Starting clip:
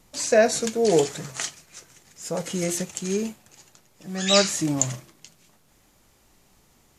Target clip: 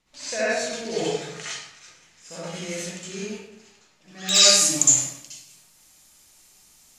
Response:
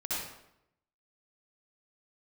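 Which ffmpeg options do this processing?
-filter_complex "[0:a]asetnsamples=n=441:p=0,asendcmd='4.29 lowpass f 10000',lowpass=2.9k,crystalizer=i=9.5:c=0[a];[1:a]atrim=start_sample=2205[b];[a][b]afir=irnorm=-1:irlink=0,volume=-12.5dB"

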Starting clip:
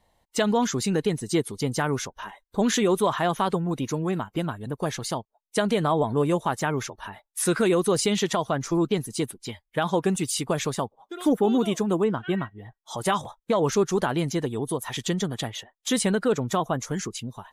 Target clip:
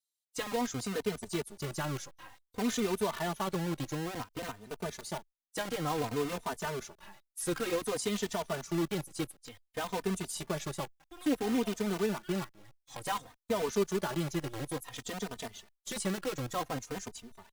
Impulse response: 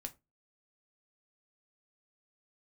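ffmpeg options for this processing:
-filter_complex "[0:a]acrossover=split=4000[a][b];[a]acrusher=bits=5:dc=4:mix=0:aa=0.000001[c];[c][b]amix=inputs=2:normalize=0,asplit=2[d][e];[e]adelay=3.1,afreqshift=-0.56[f];[d][f]amix=inputs=2:normalize=1,volume=-7.5dB"

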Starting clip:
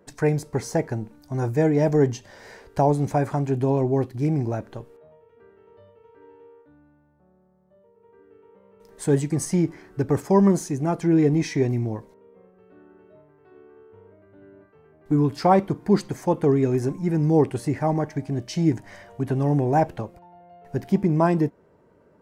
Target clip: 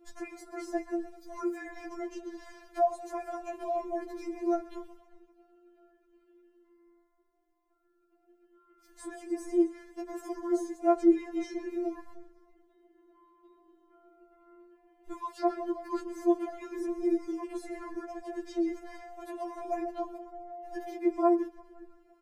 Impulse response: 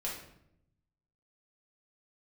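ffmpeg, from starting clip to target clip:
-filter_complex "[0:a]acrossover=split=400|1400[a][b][c];[a]acompressor=threshold=-32dB:ratio=4[d];[b]acompressor=threshold=-25dB:ratio=4[e];[c]acompressor=threshold=-52dB:ratio=4[f];[d][e][f]amix=inputs=3:normalize=0,asplit=2[g][h];[h]asplit=7[i][j][k][l][m][n][o];[i]adelay=129,afreqshift=-41,volume=-15dB[p];[j]adelay=258,afreqshift=-82,volume=-18.9dB[q];[k]adelay=387,afreqshift=-123,volume=-22.8dB[r];[l]adelay=516,afreqshift=-164,volume=-26.6dB[s];[m]adelay=645,afreqshift=-205,volume=-30.5dB[t];[n]adelay=774,afreqshift=-246,volume=-34.4dB[u];[o]adelay=903,afreqshift=-287,volume=-38.3dB[v];[p][q][r][s][t][u][v]amix=inputs=7:normalize=0[w];[g][w]amix=inputs=2:normalize=0,afftfilt=real='re*4*eq(mod(b,16),0)':imag='im*4*eq(mod(b,16),0)':win_size=2048:overlap=0.75"

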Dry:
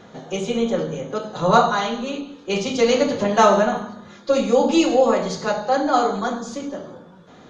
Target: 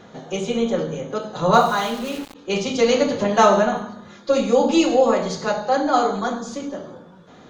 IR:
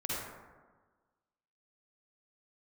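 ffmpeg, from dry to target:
-filter_complex "[0:a]asplit=3[a][b][c];[a]afade=t=out:st=1.53:d=0.02[d];[b]aeval=exprs='val(0)*gte(abs(val(0)),0.0237)':c=same,afade=t=in:st=1.53:d=0.02,afade=t=out:st=2.34:d=0.02[e];[c]afade=t=in:st=2.34:d=0.02[f];[d][e][f]amix=inputs=3:normalize=0"

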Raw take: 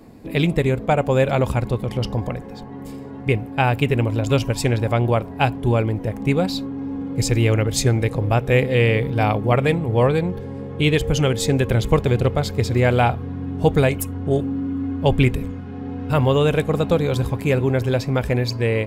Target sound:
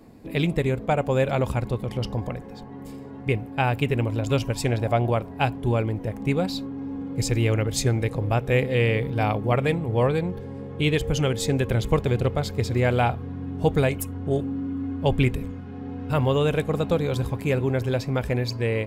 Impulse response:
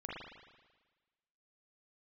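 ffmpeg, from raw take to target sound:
-filter_complex "[0:a]asettb=1/sr,asplit=3[a][b][c];[a]atrim=end=4.684[d];[b]atrim=start=4.68:end=5.1,asetpts=PTS-STARTPTS,afade=t=in:d=0.004:c=qsin,afade=t=out:st=0.416:d=0.004:c=qsin,equalizer=f=670:w=5.1:g=9[e];[c]atrim=start=5.096[f];[d][e]acrossfade=d=0.004:c1=hsin:c2=qsin[g];[g][f]acrossfade=d=0.004:c1=qsin:c2=hsin,volume=-4.5dB"

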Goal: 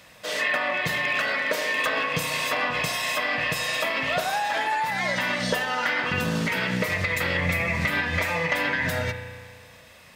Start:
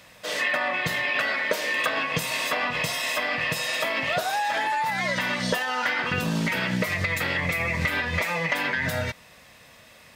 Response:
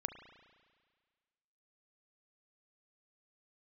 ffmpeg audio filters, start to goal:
-filter_complex "[0:a]asettb=1/sr,asplit=3[a][b][c];[a]atrim=end=0.694[d];[b]atrim=start=0.69:end=2.62,asetpts=PTS-STARTPTS,afade=t=in:d=0.004:c=qsin,afade=t=out:st=1.926:d=0.004:c=qsin,asoftclip=type=hard:threshold=-18.5dB[e];[c]atrim=start=2.616[f];[d][e]acrossfade=d=0.004:c1=hsin:c2=qsin[g];[g][f]acrossfade=d=0.004:c1=qsin:c2=hsin[h];[1:a]atrim=start_sample=2205[i];[h][i]afir=irnorm=-1:irlink=0,volume=1.5dB"

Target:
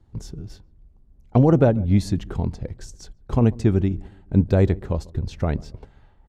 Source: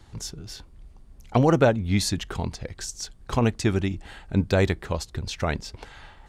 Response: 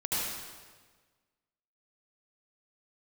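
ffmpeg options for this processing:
-filter_complex "[0:a]agate=range=-10dB:threshold=-39dB:ratio=16:detection=peak,tiltshelf=f=850:g=8.5,asplit=2[a][b];[b]adelay=142,lowpass=f=890:p=1,volume=-22dB,asplit=2[c][d];[d]adelay=142,lowpass=f=890:p=1,volume=0.44,asplit=2[e][f];[f]adelay=142,lowpass=f=890:p=1,volume=0.44[g];[a][c][e][g]amix=inputs=4:normalize=0,volume=-2.5dB"

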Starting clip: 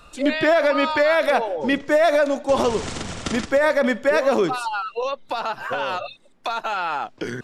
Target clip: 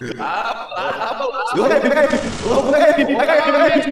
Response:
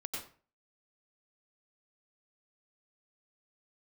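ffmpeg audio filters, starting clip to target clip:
-filter_complex "[0:a]areverse,atempo=1.9,asplit=2[a][b];[1:a]atrim=start_sample=2205,asetrate=40131,aresample=44100[c];[b][c]afir=irnorm=-1:irlink=0,volume=-0.5dB[d];[a][d]amix=inputs=2:normalize=0"

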